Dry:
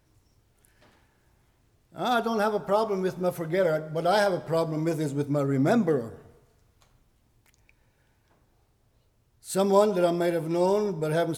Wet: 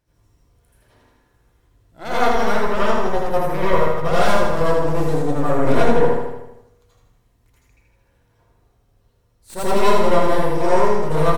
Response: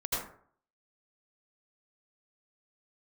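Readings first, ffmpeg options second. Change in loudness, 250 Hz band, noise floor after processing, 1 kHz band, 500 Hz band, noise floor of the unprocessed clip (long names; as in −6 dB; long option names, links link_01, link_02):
+6.5 dB, +4.0 dB, −62 dBFS, +9.0 dB, +6.0 dB, −67 dBFS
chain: -filter_complex "[0:a]aeval=exprs='0.376*(cos(1*acos(clip(val(0)/0.376,-1,1)))-cos(1*PI/2))+0.0841*(cos(8*acos(clip(val(0)/0.376,-1,1)))-cos(8*PI/2))':channel_layout=same,aecho=1:1:79|158|237|316|395|474|553:0.596|0.328|0.18|0.0991|0.0545|0.03|0.0165[link_01];[1:a]atrim=start_sample=2205[link_02];[link_01][link_02]afir=irnorm=-1:irlink=0,volume=-4.5dB"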